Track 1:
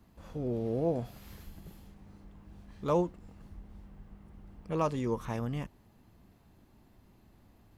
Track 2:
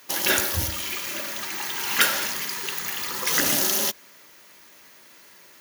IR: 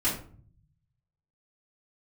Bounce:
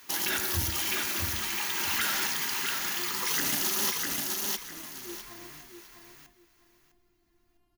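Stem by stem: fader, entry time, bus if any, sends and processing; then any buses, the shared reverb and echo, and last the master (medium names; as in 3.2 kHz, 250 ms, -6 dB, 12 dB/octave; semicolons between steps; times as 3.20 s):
0.0 dB, 0.00 s, no send, echo send -7.5 dB, compression, threshold -34 dBFS, peak gain reduction 11 dB; feedback comb 350 Hz, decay 0.17 s, harmonics all, mix 100%
-2.5 dB, 0.00 s, no send, echo send -4 dB, peak limiter -15.5 dBFS, peak gain reduction 10.5 dB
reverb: none
echo: feedback delay 654 ms, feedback 21%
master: peaking EQ 550 Hz -11.5 dB 0.35 oct; gain riding within 4 dB 2 s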